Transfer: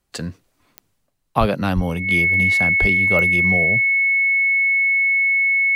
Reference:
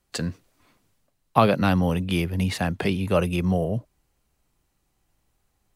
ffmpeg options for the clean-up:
-filter_complex "[0:a]adeclick=t=4,bandreject=f=2200:w=30,asplit=3[s0][s1][s2];[s0]afade=t=out:st=1.39:d=0.02[s3];[s1]highpass=f=140:w=0.5412,highpass=f=140:w=1.3066,afade=t=in:st=1.39:d=0.02,afade=t=out:st=1.51:d=0.02[s4];[s2]afade=t=in:st=1.51:d=0.02[s5];[s3][s4][s5]amix=inputs=3:normalize=0,asplit=3[s6][s7][s8];[s6]afade=t=out:st=1.75:d=0.02[s9];[s7]highpass=f=140:w=0.5412,highpass=f=140:w=1.3066,afade=t=in:st=1.75:d=0.02,afade=t=out:st=1.87:d=0.02[s10];[s8]afade=t=in:st=1.87:d=0.02[s11];[s9][s10][s11]amix=inputs=3:normalize=0,asplit=3[s12][s13][s14];[s12]afade=t=out:st=2.8:d=0.02[s15];[s13]highpass=f=140:w=0.5412,highpass=f=140:w=1.3066,afade=t=in:st=2.8:d=0.02,afade=t=out:st=2.92:d=0.02[s16];[s14]afade=t=in:st=2.92:d=0.02[s17];[s15][s16][s17]amix=inputs=3:normalize=0"

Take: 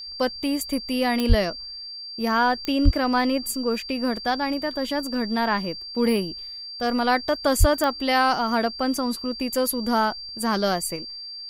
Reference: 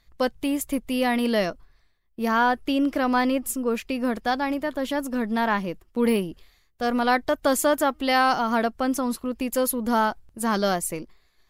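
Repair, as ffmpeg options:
-filter_complex "[0:a]adeclick=t=4,bandreject=f=4700:w=30,asplit=3[s0][s1][s2];[s0]afade=t=out:st=1.28:d=0.02[s3];[s1]highpass=f=140:w=0.5412,highpass=f=140:w=1.3066,afade=t=in:st=1.28:d=0.02,afade=t=out:st=1.4:d=0.02[s4];[s2]afade=t=in:st=1.4:d=0.02[s5];[s3][s4][s5]amix=inputs=3:normalize=0,asplit=3[s6][s7][s8];[s6]afade=t=out:st=2.84:d=0.02[s9];[s7]highpass=f=140:w=0.5412,highpass=f=140:w=1.3066,afade=t=in:st=2.84:d=0.02,afade=t=out:st=2.96:d=0.02[s10];[s8]afade=t=in:st=2.96:d=0.02[s11];[s9][s10][s11]amix=inputs=3:normalize=0,asplit=3[s12][s13][s14];[s12]afade=t=out:st=7.59:d=0.02[s15];[s13]highpass=f=140:w=0.5412,highpass=f=140:w=1.3066,afade=t=in:st=7.59:d=0.02,afade=t=out:st=7.71:d=0.02[s16];[s14]afade=t=in:st=7.71:d=0.02[s17];[s15][s16][s17]amix=inputs=3:normalize=0,asetnsamples=n=441:p=0,asendcmd='10.96 volume volume 3dB',volume=1"

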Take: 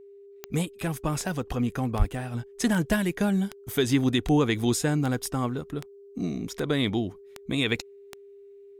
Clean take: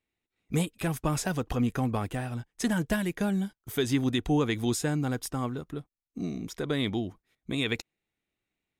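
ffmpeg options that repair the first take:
-filter_complex "[0:a]adeclick=t=4,bandreject=f=400:w=30,asplit=3[s0][s1][s2];[s0]afade=t=out:st=1.98:d=0.02[s3];[s1]highpass=f=140:w=0.5412,highpass=f=140:w=1.3066,afade=t=in:st=1.98:d=0.02,afade=t=out:st=2.1:d=0.02[s4];[s2]afade=t=in:st=2.1:d=0.02[s5];[s3][s4][s5]amix=inputs=3:normalize=0,asetnsamples=n=441:p=0,asendcmd='2.34 volume volume -3.5dB',volume=1"

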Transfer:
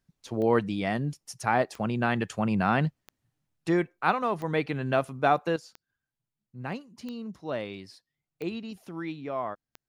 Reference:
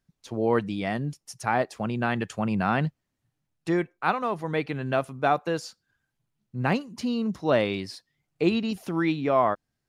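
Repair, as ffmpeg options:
-af "adeclick=t=4,asetnsamples=n=441:p=0,asendcmd='5.56 volume volume 10.5dB',volume=1"

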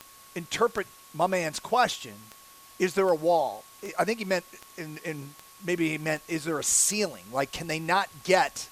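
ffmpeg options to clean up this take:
-af "adeclick=t=4,bandreject=f=1100:w=30,afwtdn=0.0028"

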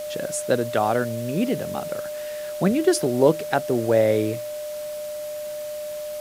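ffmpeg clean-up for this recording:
-af "bandreject=f=600:w=30,afwtdn=0.0079"

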